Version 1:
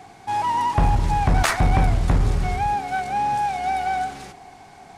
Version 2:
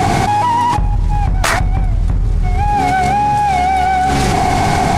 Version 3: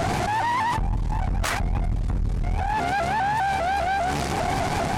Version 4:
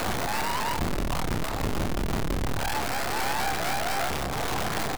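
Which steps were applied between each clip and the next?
low shelf 200 Hz +11 dB; fast leveller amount 100%; gain -8 dB
limiter -7 dBFS, peak gain reduction 5.5 dB; tube stage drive 16 dB, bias 0.75; shaped vibrato saw up 5 Hz, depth 160 cents; gain -3.5 dB
median filter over 25 samples; wrapped overs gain 21 dB; doubler 29 ms -8 dB; gain -2.5 dB

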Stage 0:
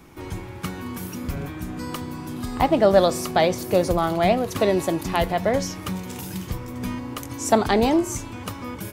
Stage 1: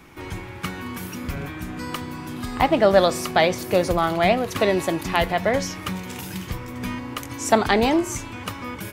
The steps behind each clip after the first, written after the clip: bell 2100 Hz +6.5 dB 1.9 oct; gain -1 dB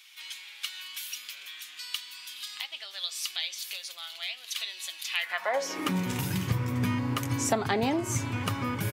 comb 7.4 ms, depth 32%; compressor 3:1, threshold -27 dBFS, peak gain reduction 13 dB; high-pass sweep 3400 Hz -> 110 Hz, 5.08–6.14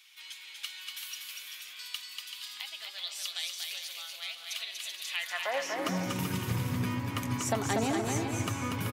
bouncing-ball echo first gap 0.24 s, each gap 0.6×, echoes 5; gain -4.5 dB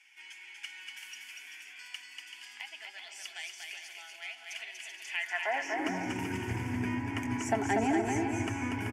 in parallel at -5 dB: short-mantissa float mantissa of 2-bit; on the sum: air absorption 79 m; fixed phaser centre 790 Hz, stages 8

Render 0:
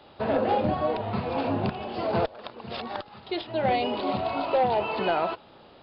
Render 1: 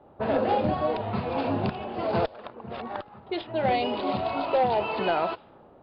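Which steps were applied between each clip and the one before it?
low-pass opened by the level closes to 850 Hz, open at -20.5 dBFS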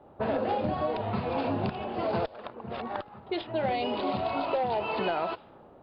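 compressor, threshold -25 dBFS, peak gain reduction 6.5 dB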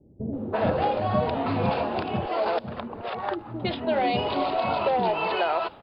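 bands offset in time lows, highs 0.33 s, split 350 Hz; gain +5.5 dB

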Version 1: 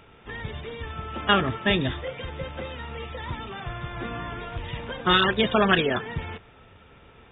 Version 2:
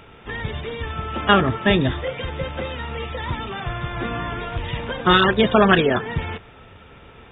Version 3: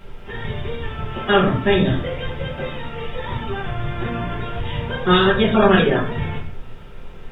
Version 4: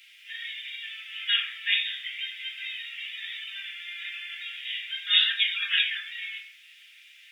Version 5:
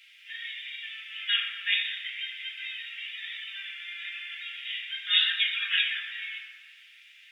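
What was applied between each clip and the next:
dynamic EQ 3000 Hz, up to -5 dB, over -37 dBFS, Q 0.83; gain +6.5 dB
added noise brown -41 dBFS; shoebox room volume 39 m³, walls mixed, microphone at 1.2 m; gain -7.5 dB
steep high-pass 2000 Hz 48 dB/oct; gain +3 dB
high shelf 5400 Hz -8 dB; tape echo 0.12 s, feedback 75%, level -9 dB, low-pass 2600 Hz

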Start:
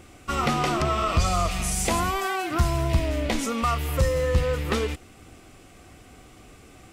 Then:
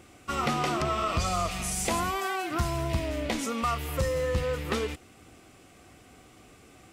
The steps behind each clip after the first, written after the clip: HPF 94 Hz 6 dB/oct; gain -3.5 dB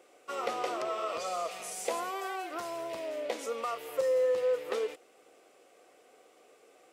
resonant high-pass 490 Hz, resonance Q 3.7; gain -8.5 dB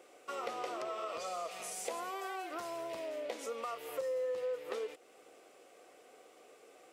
compressor 2:1, threshold -43 dBFS, peak gain reduction 10 dB; gain +1 dB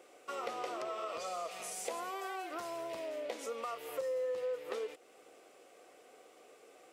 nothing audible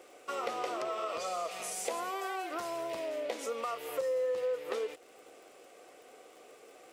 crackle 62/s -53 dBFS; gain +4 dB

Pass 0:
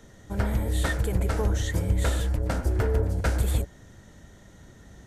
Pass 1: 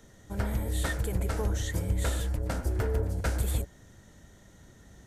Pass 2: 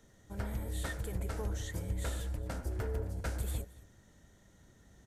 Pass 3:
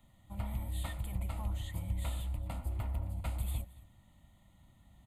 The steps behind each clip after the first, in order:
high shelf 6400 Hz +5.5 dB; gain -4.5 dB
echo 0.221 s -20.5 dB; gain -7.5 dB
fixed phaser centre 1600 Hz, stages 6; gain +1 dB

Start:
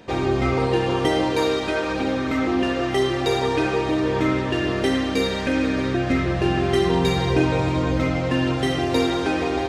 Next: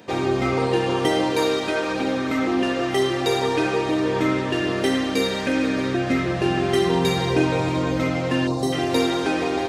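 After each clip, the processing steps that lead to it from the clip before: HPF 120 Hz 12 dB/oct; high shelf 8600 Hz +7.5 dB; spectral gain 8.47–8.73, 1200–3600 Hz -15 dB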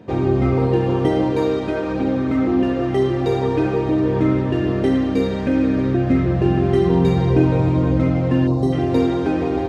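tilt -4 dB/oct; gain -2.5 dB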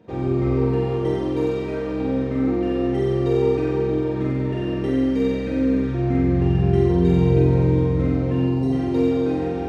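resonator 460 Hz, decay 0.38 s, mix 70%; on a send: flutter echo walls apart 7.8 m, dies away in 1.4 s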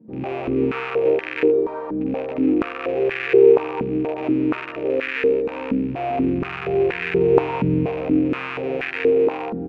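rattling part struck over -25 dBFS, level -13 dBFS; doubler 13 ms -6 dB; stepped band-pass 4.2 Hz 220–1700 Hz; gain +8.5 dB

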